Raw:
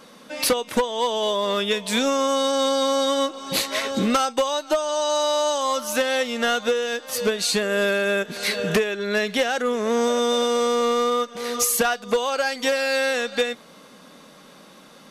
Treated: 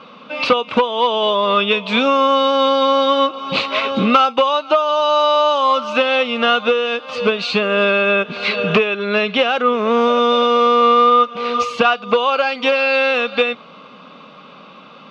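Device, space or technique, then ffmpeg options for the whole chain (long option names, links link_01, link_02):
guitar cabinet: -af "highpass=86,equalizer=frequency=330:width_type=q:width=4:gain=-5,equalizer=frequency=1200:width_type=q:width=4:gain=9,equalizer=frequency=1800:width_type=q:width=4:gain=-10,equalizer=frequency=2600:width_type=q:width=4:gain=8,lowpass=frequency=3700:width=0.5412,lowpass=frequency=3700:width=1.3066,volume=6dB"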